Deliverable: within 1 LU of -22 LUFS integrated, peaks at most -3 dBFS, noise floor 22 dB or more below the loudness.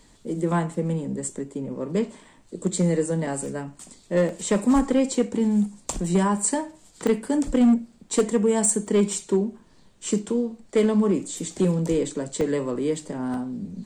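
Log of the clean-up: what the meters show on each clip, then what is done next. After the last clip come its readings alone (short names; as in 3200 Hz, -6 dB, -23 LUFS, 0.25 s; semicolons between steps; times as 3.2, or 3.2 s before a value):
clipped 0.8%; flat tops at -13.0 dBFS; dropouts 6; longest dropout 1.5 ms; loudness -24.5 LUFS; peak -13.0 dBFS; loudness target -22.0 LUFS
-> clip repair -13 dBFS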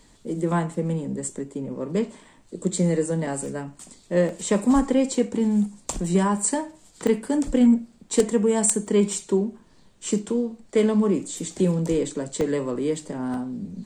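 clipped 0.0%; dropouts 6; longest dropout 1.5 ms
-> interpolate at 3.46/4.29/7.07/8.87/12.41/13.34, 1.5 ms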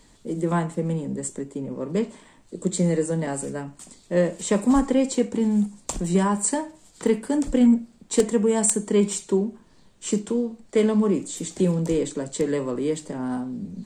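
dropouts 0; loudness -24.0 LUFS; peak -4.0 dBFS; loudness target -22.0 LUFS
-> gain +2 dB; limiter -3 dBFS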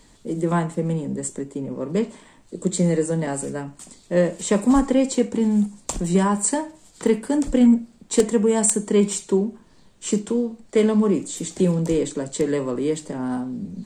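loudness -22.0 LUFS; peak -3.0 dBFS; noise floor -53 dBFS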